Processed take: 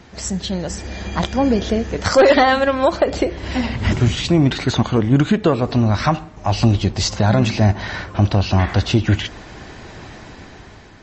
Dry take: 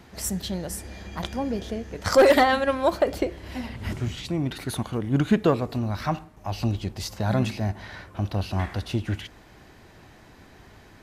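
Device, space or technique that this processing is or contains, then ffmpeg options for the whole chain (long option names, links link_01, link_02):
low-bitrate web radio: -af "dynaudnorm=framelen=260:gausssize=7:maxgain=8.5dB,alimiter=limit=-11dB:level=0:latency=1:release=212,volume=6dB" -ar 32000 -c:a libmp3lame -b:a 32k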